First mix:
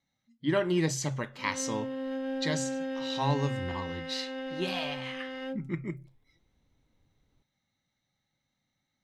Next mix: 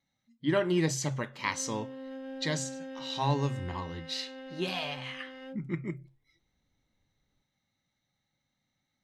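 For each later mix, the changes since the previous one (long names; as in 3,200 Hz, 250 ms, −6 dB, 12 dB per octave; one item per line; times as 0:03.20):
background −7.5 dB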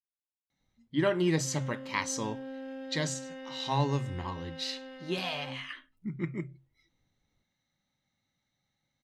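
speech: entry +0.50 s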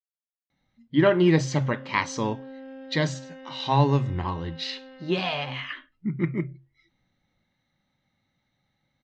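speech +8.5 dB
master: add high-frequency loss of the air 170 metres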